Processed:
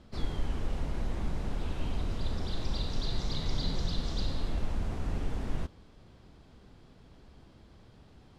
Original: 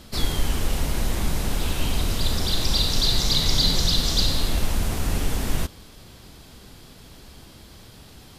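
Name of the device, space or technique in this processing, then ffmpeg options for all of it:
through cloth: -af "lowpass=7.8k,highshelf=f=2.5k:g=-14,volume=-8.5dB"

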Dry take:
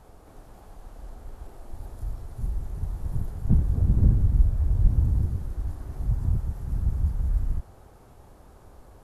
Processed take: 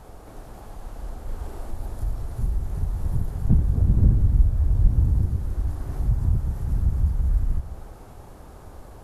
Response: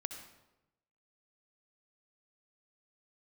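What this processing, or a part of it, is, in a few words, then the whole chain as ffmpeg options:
compressed reverb return: -filter_complex "[0:a]asettb=1/sr,asplit=3[a][b][c];[a]atrim=end=1.244[d];[b]atrim=start=1.24:end=1.71,asetpts=PTS-STARTPTS,afade=t=in:d=0.004:c=qsin,afade=t=out:st=0.466:d=0.004:c=qsin,asplit=2[e][f];[f]adelay=40,volume=-3dB[g];[e][g]amix=inputs=2:normalize=0,atrim=end_sample=20727[h];[c]atrim=start=1.706[i];[d][h]acrossfade=d=0.004:c1=hsin:c2=qsin[j];[j][i]acrossfade=d=0.004:c1=qsin:c2=hsin,asplit=2[k][l];[1:a]atrim=start_sample=2205[m];[l][m]afir=irnorm=-1:irlink=0,acompressor=threshold=-31dB:ratio=6,volume=3.5dB[n];[k][n]amix=inputs=2:normalize=0"

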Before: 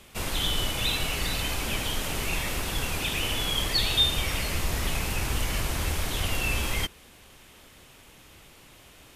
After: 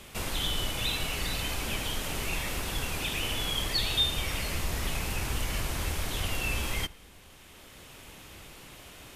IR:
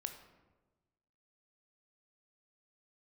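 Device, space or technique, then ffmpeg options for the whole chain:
ducked reverb: -filter_complex "[0:a]asplit=3[a][b][c];[1:a]atrim=start_sample=2205[d];[b][d]afir=irnorm=-1:irlink=0[e];[c]apad=whole_len=403833[f];[e][f]sidechaincompress=threshold=-41dB:ratio=8:attack=16:release=851,volume=7dB[g];[a][g]amix=inputs=2:normalize=0,volume=-5dB"

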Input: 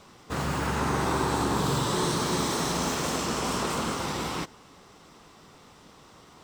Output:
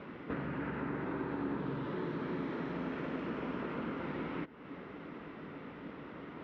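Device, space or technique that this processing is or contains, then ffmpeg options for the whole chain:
bass amplifier: -af "acompressor=threshold=-44dB:ratio=5,highpass=66,equalizer=f=75:t=q:w=4:g=-9,equalizer=f=110:t=q:w=4:g=-7,equalizer=f=280:t=q:w=4:g=6,equalizer=f=780:t=q:w=4:g=-8,equalizer=f=1.1k:t=q:w=4:g=-7,lowpass=f=2.3k:w=0.5412,lowpass=f=2.3k:w=1.3066,volume=7.5dB"

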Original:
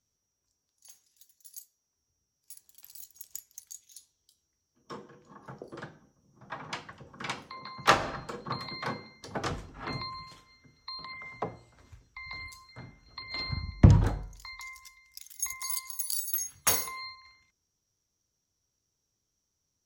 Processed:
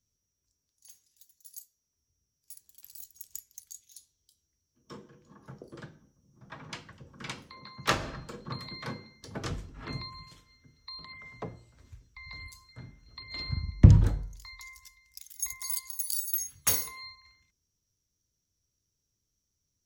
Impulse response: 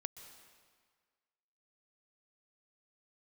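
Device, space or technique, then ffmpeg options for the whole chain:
smiley-face EQ: -af "lowshelf=f=140:g=6.5,equalizer=f=940:t=o:w=1.8:g=-5.5,highshelf=f=9k:g=3.5,bandreject=f=760:w=12,volume=-2dB"

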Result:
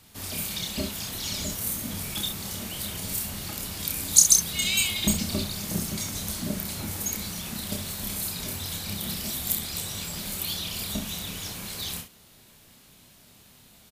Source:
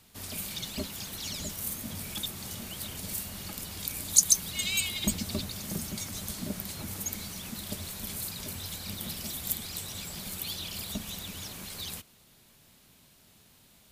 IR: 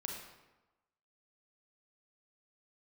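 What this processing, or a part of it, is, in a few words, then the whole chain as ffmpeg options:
slapback doubling: -filter_complex "[0:a]asplit=3[a][b][c];[b]adelay=29,volume=-4dB[d];[c]adelay=65,volume=-9dB[e];[a][d][e]amix=inputs=3:normalize=0,volume=3.5dB"

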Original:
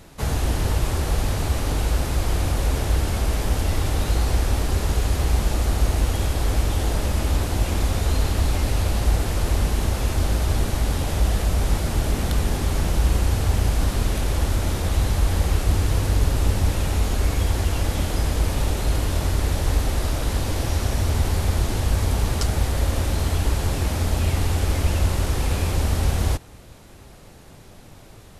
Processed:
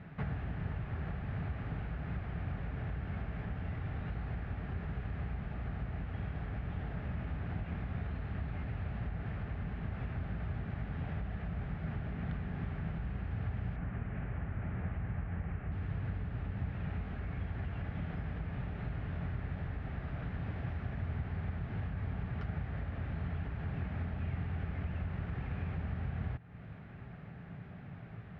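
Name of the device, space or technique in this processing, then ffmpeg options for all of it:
bass amplifier: -filter_complex "[0:a]asettb=1/sr,asplit=3[a][b][c];[a]atrim=end=13.764[d];[b]atrim=start=13.76:end=15.72,asetpts=PTS-STARTPTS,afade=t=in:d=0.004:c=qsin,afade=t=out:st=1.956:d=0.004:c=qsin,lowpass=f=2.7k:w=0.5412,lowpass=f=2.7k:w=1.3066[e];[c]atrim=start=15.716[f];[d][e]acrossfade=d=0.004:c1=hsin:c2=qsin[g];[g][f]acrossfade=d=0.004:c1=qsin:c2=hsin,acompressor=threshold=-34dB:ratio=3,highpass=67,equalizer=f=120:t=q:w=4:g=6,equalizer=f=170:t=q:w=4:g=9,equalizer=f=330:t=q:w=4:g=-8,equalizer=f=520:t=q:w=4:g=-8,equalizer=f=970:t=q:w=4:g=-7,equalizer=f=1.7k:t=q:w=4:g=3,lowpass=f=2.3k:w=0.5412,lowpass=f=2.3k:w=1.3066,volume=-3dB"

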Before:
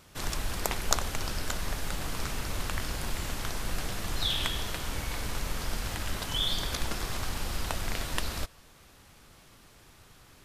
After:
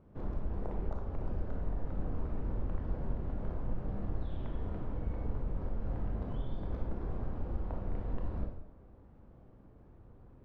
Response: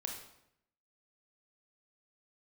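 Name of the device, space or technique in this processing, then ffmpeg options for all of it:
television next door: -filter_complex "[0:a]acompressor=threshold=-31dB:ratio=3,lowpass=530[a];[1:a]atrim=start_sample=2205[b];[a][b]afir=irnorm=-1:irlink=0,volume=2.5dB"

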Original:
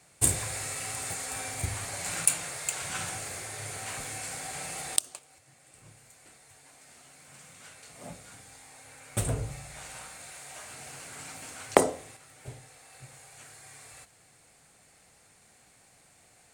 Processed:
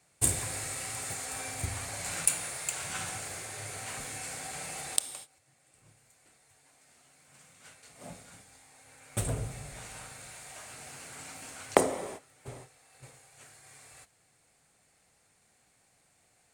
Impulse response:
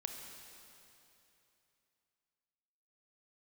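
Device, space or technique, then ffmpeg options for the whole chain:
keyed gated reverb: -filter_complex "[0:a]asplit=3[a][b][c];[1:a]atrim=start_sample=2205[d];[b][d]afir=irnorm=-1:irlink=0[e];[c]apad=whole_len=729118[f];[e][f]sidechaingate=range=-33dB:threshold=-49dB:ratio=16:detection=peak,volume=2dB[g];[a][g]amix=inputs=2:normalize=0,volume=-8dB"

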